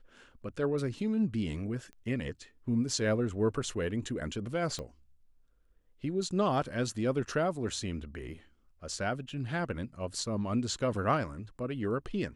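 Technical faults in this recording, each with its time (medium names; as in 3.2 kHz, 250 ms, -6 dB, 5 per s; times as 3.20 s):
1.93 s: pop -36 dBFS
4.79 s: pop -25 dBFS
9.29 s: dropout 3.3 ms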